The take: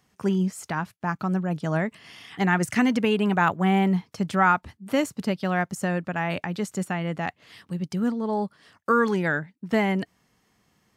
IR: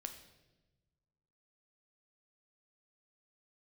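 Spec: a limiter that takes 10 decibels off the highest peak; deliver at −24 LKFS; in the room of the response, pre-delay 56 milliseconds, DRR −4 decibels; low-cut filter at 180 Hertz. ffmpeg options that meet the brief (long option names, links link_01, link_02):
-filter_complex "[0:a]highpass=180,alimiter=limit=-17dB:level=0:latency=1,asplit=2[link_01][link_02];[1:a]atrim=start_sample=2205,adelay=56[link_03];[link_02][link_03]afir=irnorm=-1:irlink=0,volume=7.5dB[link_04];[link_01][link_04]amix=inputs=2:normalize=0,volume=-0.5dB"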